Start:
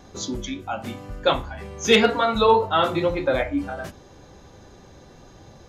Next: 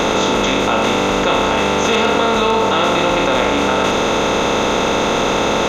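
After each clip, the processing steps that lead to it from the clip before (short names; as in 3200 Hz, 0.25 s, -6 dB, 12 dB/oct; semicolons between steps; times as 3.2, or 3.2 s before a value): per-bin compression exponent 0.2; fast leveller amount 70%; gain -5 dB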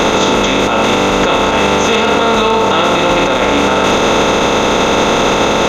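limiter -10.5 dBFS, peak gain reduction 8.5 dB; gain +8 dB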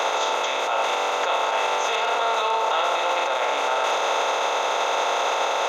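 ladder high-pass 540 Hz, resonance 35%; gain -4 dB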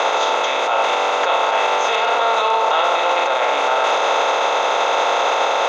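air absorption 67 m; gain +6 dB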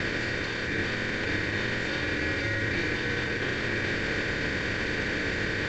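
CVSD 32 kbps; ring modulator 1000 Hz; gain -8 dB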